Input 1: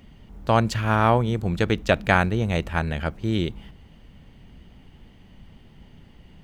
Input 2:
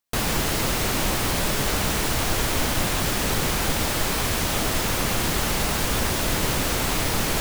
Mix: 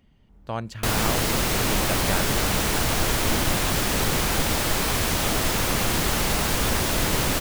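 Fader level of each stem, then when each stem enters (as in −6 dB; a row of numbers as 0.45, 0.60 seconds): −11.0, +0.5 decibels; 0.00, 0.70 seconds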